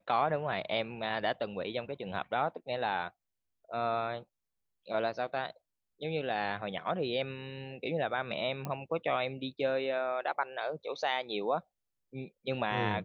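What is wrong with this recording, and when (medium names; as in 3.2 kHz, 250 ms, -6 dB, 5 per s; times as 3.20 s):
8.65 s: pop -23 dBFS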